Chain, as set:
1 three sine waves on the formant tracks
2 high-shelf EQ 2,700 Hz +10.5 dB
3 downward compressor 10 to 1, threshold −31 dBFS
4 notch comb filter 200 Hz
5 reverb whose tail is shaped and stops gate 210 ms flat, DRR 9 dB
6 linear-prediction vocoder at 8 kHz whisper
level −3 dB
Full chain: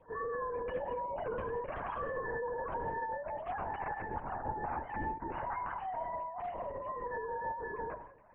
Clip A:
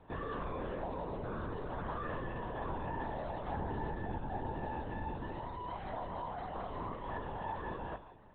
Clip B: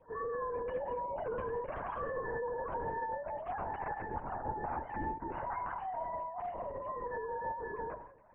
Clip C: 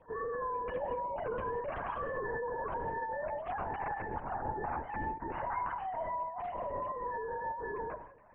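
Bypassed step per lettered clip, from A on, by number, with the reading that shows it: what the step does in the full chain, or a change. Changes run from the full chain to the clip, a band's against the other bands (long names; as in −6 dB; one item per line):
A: 1, 125 Hz band +10.5 dB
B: 2, 2 kHz band −2.0 dB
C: 4, change in integrated loudness +1.0 LU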